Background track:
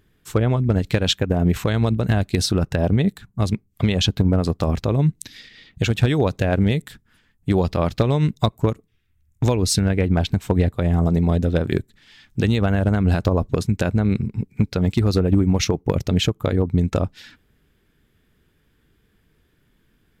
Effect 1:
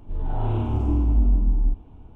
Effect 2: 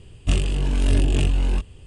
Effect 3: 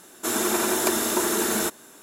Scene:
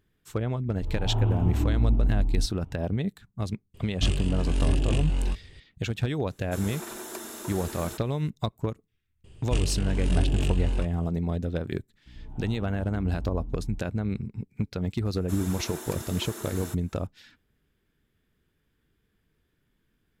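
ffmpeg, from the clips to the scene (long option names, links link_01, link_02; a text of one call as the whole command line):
ffmpeg -i bed.wav -i cue0.wav -i cue1.wav -i cue2.wav -filter_complex "[1:a]asplit=2[link_01][link_02];[2:a]asplit=2[link_03][link_04];[3:a]asplit=2[link_05][link_06];[0:a]volume=-10dB[link_07];[link_01]equalizer=frequency=100:width_type=o:width=0.77:gain=6.5[link_08];[link_02]aeval=exprs='val(0)+0.0282*(sin(2*PI*60*n/s)+sin(2*PI*2*60*n/s)/2+sin(2*PI*3*60*n/s)/3+sin(2*PI*4*60*n/s)/4+sin(2*PI*5*60*n/s)/5)':channel_layout=same[link_09];[link_08]atrim=end=2.15,asetpts=PTS-STARTPTS,volume=-5dB,afade=type=in:duration=0.004:curve=hsin,afade=type=out:start_time=2.146:duration=0.004:curve=hsin,adelay=720[link_10];[link_03]atrim=end=1.86,asetpts=PTS-STARTPTS,volume=-5.5dB,afade=type=in:duration=0.004:curve=hsin,afade=type=out:start_time=1.856:duration=0.004:curve=hsin,adelay=3740[link_11];[link_05]atrim=end=2.02,asetpts=PTS-STARTPTS,volume=-15.5dB,afade=type=in:duration=0.004:curve=hsin,afade=type=out:start_time=2.016:duration=0.004:curve=hsin,adelay=6280[link_12];[link_04]atrim=end=1.86,asetpts=PTS-STARTPTS,volume=-6dB,afade=type=in:duration=0.004:curve=hsin,afade=type=out:start_time=1.856:duration=0.004:curve=hsin,adelay=9240[link_13];[link_09]atrim=end=2.15,asetpts=PTS-STARTPTS,volume=-16.5dB,afade=type=in:duration=0.004:curve=hsin,afade=type=out:start_time=2.146:duration=0.004:curve=hsin,adelay=12060[link_14];[link_06]atrim=end=2.02,asetpts=PTS-STARTPTS,volume=-16dB,afade=type=in:duration=0.004:curve=hsin,afade=type=out:start_time=2.016:duration=0.004:curve=hsin,adelay=15050[link_15];[link_07][link_10][link_11][link_12][link_13][link_14][link_15]amix=inputs=7:normalize=0" out.wav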